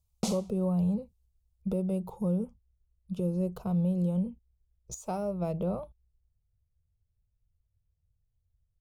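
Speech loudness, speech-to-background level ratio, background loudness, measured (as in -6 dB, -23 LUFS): -32.0 LUFS, 4.5 dB, -36.5 LUFS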